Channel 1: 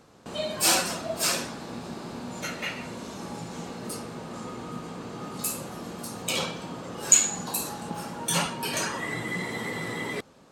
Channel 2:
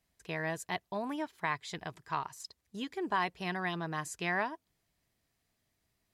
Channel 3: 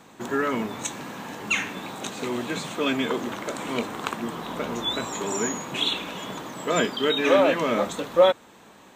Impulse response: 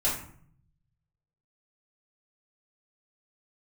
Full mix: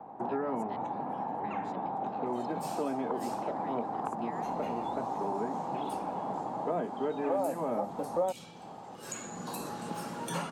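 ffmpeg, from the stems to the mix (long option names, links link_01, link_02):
-filter_complex "[0:a]adelay=2000,volume=-2dB,afade=type=in:start_time=4.23:duration=0.62:silence=0.375837,afade=type=in:start_time=8.89:duration=0.72:silence=0.237137[link_01];[1:a]volume=-16dB[link_02];[2:a]lowpass=frequency=800:width_type=q:width=6.5,volume=-3dB[link_03];[link_01][link_02][link_03]amix=inputs=3:normalize=0,equalizer=frequency=72:width=4.5:gain=-12,acrossover=split=140|290|1700|6800[link_04][link_05][link_06][link_07][link_08];[link_04]acompressor=threshold=-55dB:ratio=4[link_09];[link_05]acompressor=threshold=-39dB:ratio=4[link_10];[link_06]acompressor=threshold=-34dB:ratio=4[link_11];[link_07]acompressor=threshold=-50dB:ratio=4[link_12];[link_08]acompressor=threshold=-49dB:ratio=4[link_13];[link_09][link_10][link_11][link_12][link_13]amix=inputs=5:normalize=0"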